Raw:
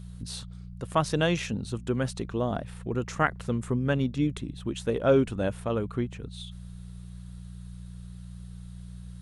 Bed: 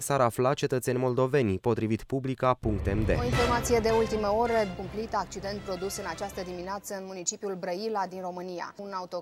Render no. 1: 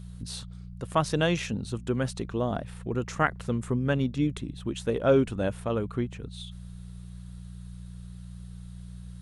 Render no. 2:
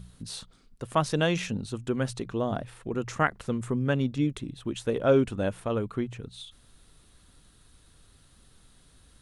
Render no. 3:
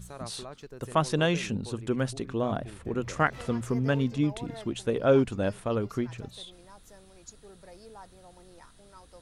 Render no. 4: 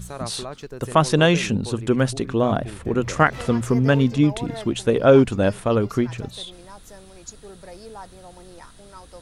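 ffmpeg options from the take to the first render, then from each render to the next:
-af anull
-af "bandreject=f=60:t=h:w=4,bandreject=f=120:t=h:w=4,bandreject=f=180:t=h:w=4"
-filter_complex "[1:a]volume=-18dB[a];[0:a][a]amix=inputs=2:normalize=0"
-af "volume=9dB,alimiter=limit=-3dB:level=0:latency=1"

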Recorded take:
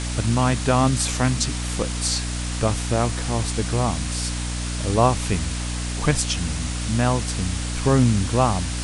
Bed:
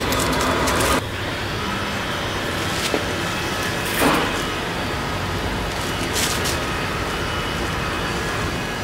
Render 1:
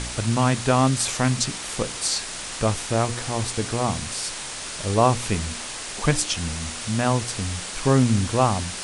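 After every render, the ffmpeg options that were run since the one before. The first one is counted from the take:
-af "bandreject=f=60:t=h:w=4,bandreject=f=120:t=h:w=4,bandreject=f=180:t=h:w=4,bandreject=f=240:t=h:w=4,bandreject=f=300:t=h:w=4,bandreject=f=360:t=h:w=4,bandreject=f=420:t=h:w=4,bandreject=f=480:t=h:w=4"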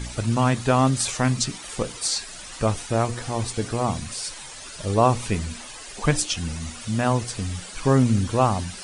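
-af "afftdn=nr=12:nf=-34"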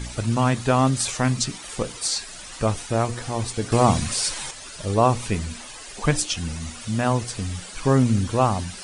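-filter_complex "[0:a]asplit=3[a][b][c];[a]atrim=end=3.722[d];[b]atrim=start=3.718:end=4.512,asetpts=PTS-STARTPTS,volume=7dB[e];[c]atrim=start=4.508[f];[d][e]acrossfade=d=0.004:c1=hsin:c2=hsin[g];[g][f]acrossfade=d=0.004:c1=hsin:c2=hsin"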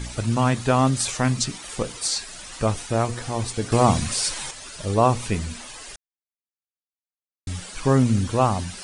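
-filter_complex "[0:a]asplit=3[a][b][c];[a]atrim=end=5.96,asetpts=PTS-STARTPTS,afade=t=out:st=5.956:d=0.004:c=hsin[d];[b]atrim=start=5.96:end=7.47,asetpts=PTS-STARTPTS,volume=0[e];[c]atrim=start=7.47,asetpts=PTS-STARTPTS,afade=t=in:d=0.004:c=hsin[f];[d][e][f]concat=n=3:v=0:a=1"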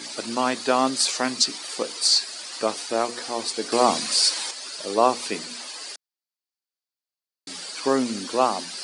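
-af "highpass=f=270:w=0.5412,highpass=f=270:w=1.3066,equalizer=f=4.6k:t=o:w=0.43:g=10.5"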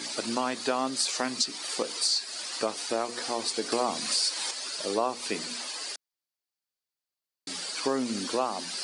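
-af "acompressor=threshold=-26dB:ratio=3"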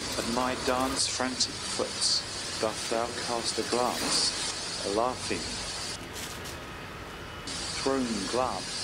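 -filter_complex "[1:a]volume=-17dB[a];[0:a][a]amix=inputs=2:normalize=0"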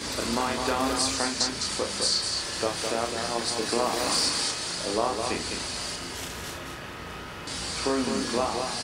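-filter_complex "[0:a]asplit=2[a][b];[b]adelay=34,volume=-5dB[c];[a][c]amix=inputs=2:normalize=0,asplit=2[d][e];[e]aecho=0:1:208:0.531[f];[d][f]amix=inputs=2:normalize=0"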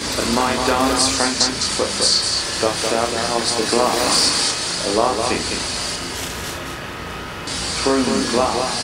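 -af "volume=9dB"

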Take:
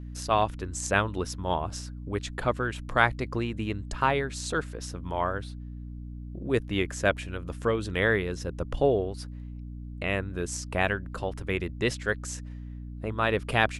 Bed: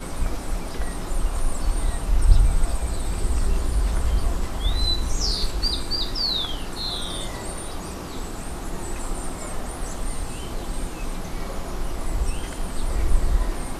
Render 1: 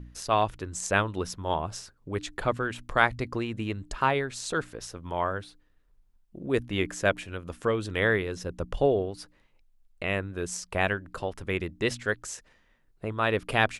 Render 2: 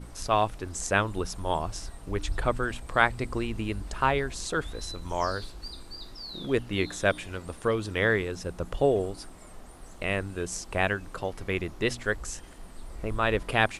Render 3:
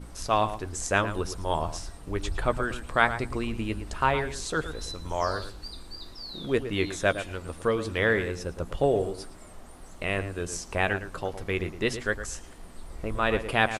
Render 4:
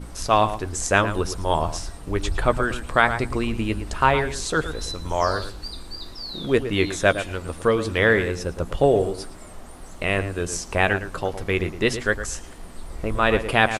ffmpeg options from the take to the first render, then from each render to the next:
-af "bandreject=f=60:t=h:w=4,bandreject=f=120:t=h:w=4,bandreject=f=180:t=h:w=4,bandreject=f=240:t=h:w=4,bandreject=f=300:t=h:w=4"
-filter_complex "[1:a]volume=-17dB[a];[0:a][a]amix=inputs=2:normalize=0"
-filter_complex "[0:a]asplit=2[a][b];[b]adelay=13,volume=-12.5dB[c];[a][c]amix=inputs=2:normalize=0,asplit=2[d][e];[e]adelay=112,lowpass=f=2.2k:p=1,volume=-10.5dB,asplit=2[f][g];[g]adelay=112,lowpass=f=2.2k:p=1,volume=0.15[h];[d][f][h]amix=inputs=3:normalize=0"
-af "volume=6dB,alimiter=limit=-2dB:level=0:latency=1"

